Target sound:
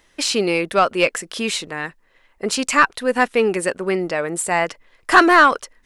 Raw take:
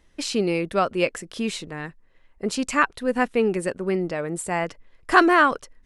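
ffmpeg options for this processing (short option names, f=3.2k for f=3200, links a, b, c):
-filter_complex "[0:a]aemphasis=mode=production:type=50kf,asplit=2[a][b];[b]highpass=f=720:p=1,volume=13dB,asoftclip=type=tanh:threshold=-1.5dB[c];[a][c]amix=inputs=2:normalize=0,lowpass=f=2.9k:p=1,volume=-6dB,volume=1dB"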